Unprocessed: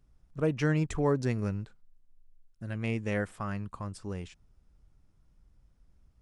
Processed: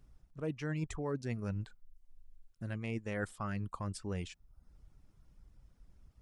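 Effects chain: reverb removal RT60 0.53 s; reverse; compressor 10:1, threshold -37 dBFS, peak gain reduction 15 dB; reverse; gain +3.5 dB

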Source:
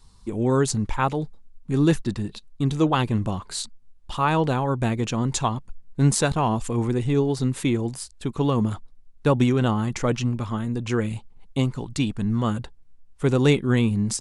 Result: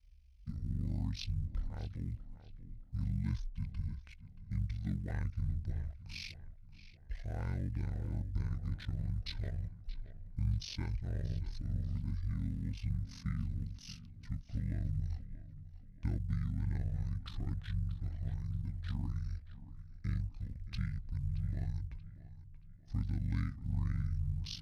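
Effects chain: G.711 law mismatch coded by A; in parallel at -12 dB: hard clip -17.5 dBFS, distortion -13 dB; on the sum: passive tone stack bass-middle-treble 10-0-1; compressor 2:1, threshold -40 dBFS, peak gain reduction 9.5 dB; bell 80 Hz +13 dB 0.27 oct; ring modulator 41 Hz; HPF 51 Hz; on a send: tape echo 0.362 s, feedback 47%, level -13 dB, low-pass 5200 Hz; on the sum: speed mistake 78 rpm record played at 45 rpm; gain +7 dB

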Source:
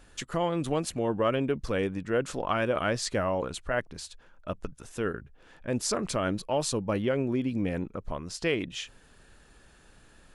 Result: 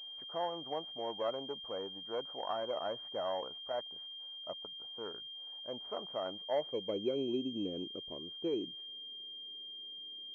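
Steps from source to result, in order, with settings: self-modulated delay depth 0.13 ms; band-pass sweep 770 Hz -> 360 Hz, 6.33–7.14; pulse-width modulation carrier 3200 Hz; gain -3 dB

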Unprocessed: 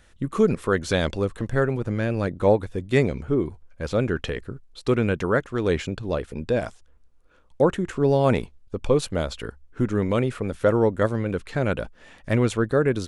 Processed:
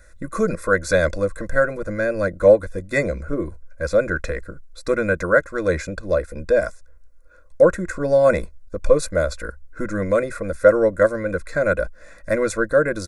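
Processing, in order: fixed phaser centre 610 Hz, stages 8; comb 2 ms, depth 76%; gain +5.5 dB

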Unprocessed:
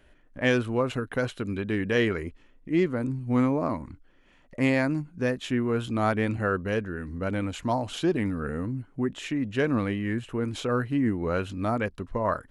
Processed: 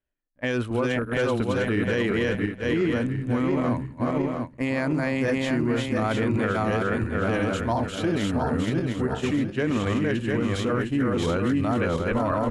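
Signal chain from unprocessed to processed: regenerating reverse delay 0.352 s, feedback 62%, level -1.5 dB; expander -24 dBFS; limiter -21 dBFS, peak gain reduction 10.5 dB; gain +5 dB

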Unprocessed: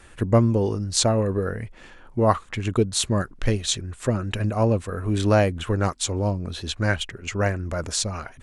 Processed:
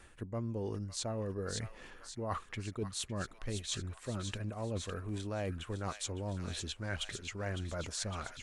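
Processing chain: thin delay 0.558 s, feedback 64%, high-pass 1800 Hz, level -9.5 dB; reverse; compressor 6:1, threshold -29 dBFS, peak gain reduction 16.5 dB; reverse; gain -6.5 dB

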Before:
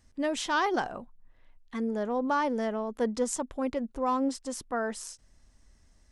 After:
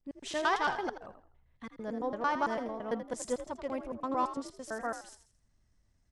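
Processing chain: slices in reverse order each 0.112 s, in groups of 2; high shelf 6400 Hz -5.5 dB; on a send: frequency-shifting echo 82 ms, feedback 35%, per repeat +57 Hz, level -8 dB; on the sum: dynamic EQ 290 Hz, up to -5 dB, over -41 dBFS, Q 0.8; upward expander 1.5:1, over -48 dBFS

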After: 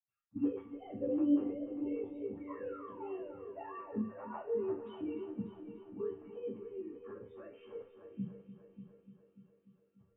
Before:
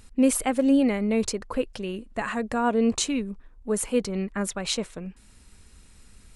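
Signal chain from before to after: sine-wave speech; painted sound fall, 1.45–2.16, 380–2300 Hz -34 dBFS; granular stretch 1.6×, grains 55 ms; in parallel at -3 dB: limiter -18 dBFS, peak gain reduction 8.5 dB; on the sum: flange 1.1 Hz, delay 7.3 ms, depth 4.4 ms, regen +50%; reverb, pre-delay 77 ms; spectral delete 1.53–2.37, 1000–2100 Hz; multi-head echo 0.295 s, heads first and second, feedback 53%, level -14 dB; gain +5 dB

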